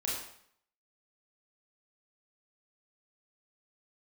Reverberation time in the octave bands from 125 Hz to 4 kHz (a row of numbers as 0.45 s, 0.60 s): 0.65 s, 0.65 s, 0.65 s, 0.65 s, 0.60 s, 0.60 s